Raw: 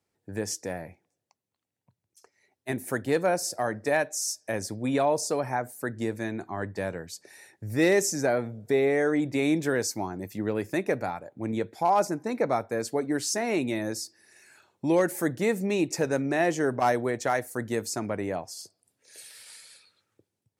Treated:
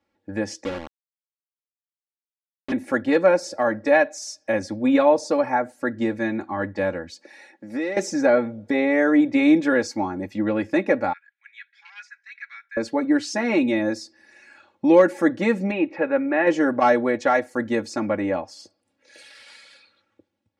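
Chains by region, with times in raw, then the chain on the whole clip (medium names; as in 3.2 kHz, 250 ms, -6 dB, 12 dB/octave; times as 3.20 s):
0.64–2.72 s: steep low-pass 520 Hz + de-hum 189.8 Hz, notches 40 + word length cut 6-bit, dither none
7.10–7.97 s: high-pass 190 Hz 24 dB/octave + compression 5:1, threshold -32 dBFS
11.13–12.77 s: Chebyshev high-pass 1.6 kHz, order 5 + tape spacing loss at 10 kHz 20 dB
15.71–16.47 s: low-pass 2.7 kHz 24 dB/octave + bass shelf 260 Hz -10.5 dB
whole clip: low-pass 3.4 kHz 12 dB/octave; bass shelf 130 Hz -3.5 dB; comb 3.6 ms, depth 88%; trim +5 dB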